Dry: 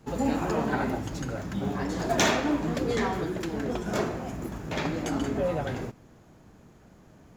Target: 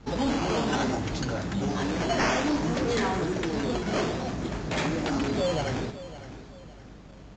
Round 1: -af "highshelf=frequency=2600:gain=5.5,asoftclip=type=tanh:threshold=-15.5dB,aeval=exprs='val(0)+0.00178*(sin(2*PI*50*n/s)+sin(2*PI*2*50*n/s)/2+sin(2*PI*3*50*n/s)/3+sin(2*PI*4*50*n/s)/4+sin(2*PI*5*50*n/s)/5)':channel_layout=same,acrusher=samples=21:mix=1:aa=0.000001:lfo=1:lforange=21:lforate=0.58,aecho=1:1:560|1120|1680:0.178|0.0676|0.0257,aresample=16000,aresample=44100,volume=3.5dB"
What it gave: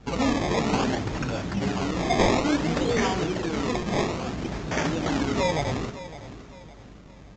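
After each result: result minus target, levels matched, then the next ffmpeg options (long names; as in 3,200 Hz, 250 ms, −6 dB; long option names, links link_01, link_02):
soft clipping: distortion −8 dB; sample-and-hold swept by an LFO: distortion +7 dB
-af "highshelf=frequency=2600:gain=5.5,asoftclip=type=tanh:threshold=-24.5dB,aeval=exprs='val(0)+0.00178*(sin(2*PI*50*n/s)+sin(2*PI*2*50*n/s)/2+sin(2*PI*3*50*n/s)/3+sin(2*PI*4*50*n/s)/4+sin(2*PI*5*50*n/s)/5)':channel_layout=same,acrusher=samples=21:mix=1:aa=0.000001:lfo=1:lforange=21:lforate=0.58,aecho=1:1:560|1120|1680:0.178|0.0676|0.0257,aresample=16000,aresample=44100,volume=3.5dB"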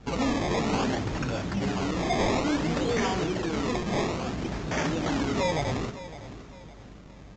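sample-and-hold swept by an LFO: distortion +7 dB
-af "highshelf=frequency=2600:gain=5.5,asoftclip=type=tanh:threshold=-24.5dB,aeval=exprs='val(0)+0.00178*(sin(2*PI*50*n/s)+sin(2*PI*2*50*n/s)/2+sin(2*PI*3*50*n/s)/3+sin(2*PI*4*50*n/s)/4+sin(2*PI*5*50*n/s)/5)':channel_layout=same,acrusher=samples=8:mix=1:aa=0.000001:lfo=1:lforange=8:lforate=0.58,aecho=1:1:560|1120|1680:0.178|0.0676|0.0257,aresample=16000,aresample=44100,volume=3.5dB"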